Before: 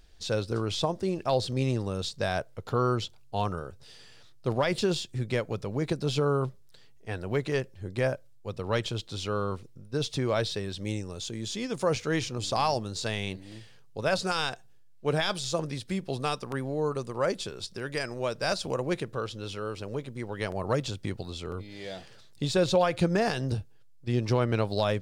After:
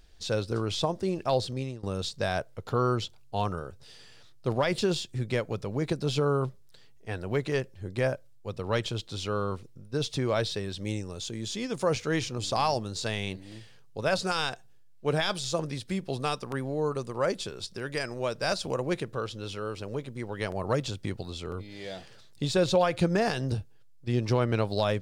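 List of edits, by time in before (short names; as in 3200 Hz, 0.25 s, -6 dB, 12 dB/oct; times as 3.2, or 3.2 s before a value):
1.37–1.83 fade out, to -20.5 dB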